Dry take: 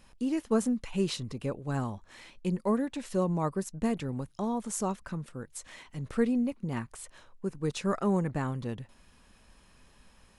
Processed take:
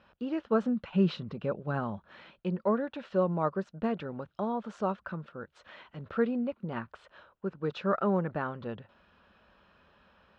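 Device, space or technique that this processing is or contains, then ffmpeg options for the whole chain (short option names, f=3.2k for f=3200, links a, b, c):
guitar cabinet: -filter_complex "[0:a]highpass=90,equalizer=f=130:t=q:w=4:g=-9,equalizer=f=270:t=q:w=4:g=-6,equalizer=f=590:t=q:w=4:g=5,equalizer=f=1.4k:t=q:w=4:g=8,equalizer=f=2.1k:t=q:w=4:g=-6,lowpass=f=3.5k:w=0.5412,lowpass=f=3.5k:w=1.3066,asettb=1/sr,asplit=3[a][b][c];[a]atrim=end=0.654[d];[b]atrim=start=0.65:end=2.31,asetpts=PTS-STARTPTS,afade=t=in:d=0.004:c=qsin,afade=t=out:st=1.656:d=0.004:c=qsin,equalizer=f=170:t=o:w=0.79:g=9[e];[c]atrim=start=2.306[f];[d][e]acrossfade=d=0.004:c1=hsin:c2=qsin[g];[g][f]acrossfade=d=0.004:c1=qsin:c2=hsin"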